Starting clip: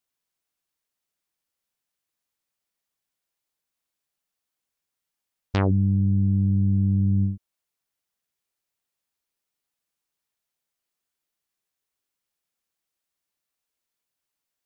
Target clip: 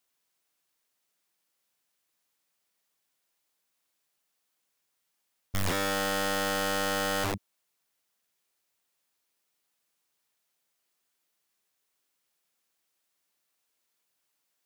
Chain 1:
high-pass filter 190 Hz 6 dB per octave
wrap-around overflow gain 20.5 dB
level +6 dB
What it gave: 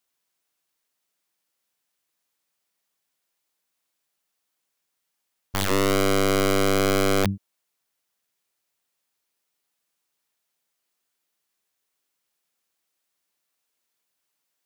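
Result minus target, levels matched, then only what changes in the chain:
wrap-around overflow: distortion −36 dB
change: wrap-around overflow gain 30.5 dB

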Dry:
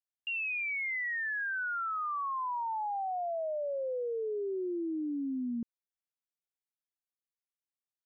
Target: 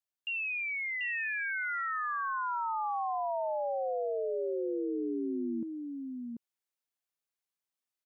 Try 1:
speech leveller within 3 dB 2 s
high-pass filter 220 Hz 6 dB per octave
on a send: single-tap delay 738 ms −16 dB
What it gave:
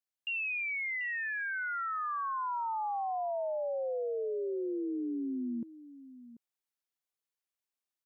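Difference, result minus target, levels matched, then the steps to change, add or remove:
echo-to-direct −11.5 dB
change: single-tap delay 738 ms −4.5 dB

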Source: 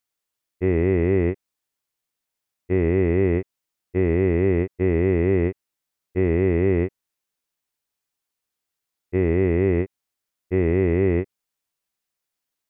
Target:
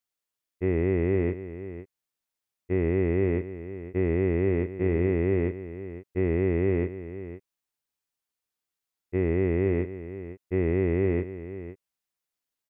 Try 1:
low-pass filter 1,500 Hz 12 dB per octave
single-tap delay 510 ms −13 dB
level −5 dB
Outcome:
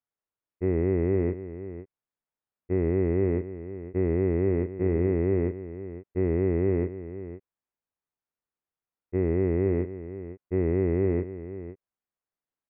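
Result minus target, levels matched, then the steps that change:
2,000 Hz band −6.0 dB
remove: low-pass filter 1,500 Hz 12 dB per octave

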